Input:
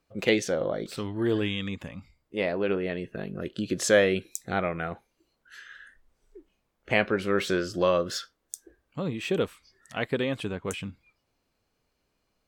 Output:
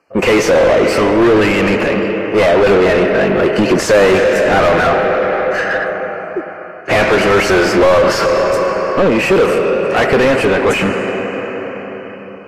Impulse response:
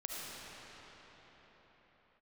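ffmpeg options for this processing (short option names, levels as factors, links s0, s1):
-filter_complex "[0:a]deesser=0.45,agate=range=0.178:threshold=0.00447:ratio=16:detection=peak,asuperstop=centerf=3600:order=8:qfactor=2.7,lowshelf=f=150:g=-10.5,acontrast=67,asplit=2[s0][s1];[1:a]atrim=start_sample=2205[s2];[s1][s2]afir=irnorm=-1:irlink=0,volume=0.251[s3];[s0][s3]amix=inputs=2:normalize=0,asplit=2[s4][s5];[s5]highpass=f=720:p=1,volume=63.1,asoftclip=type=tanh:threshold=0.75[s6];[s4][s6]amix=inputs=2:normalize=0,lowpass=f=1100:p=1,volume=0.501,volume=1.12" -ar 32000 -c:a aac -b:a 48k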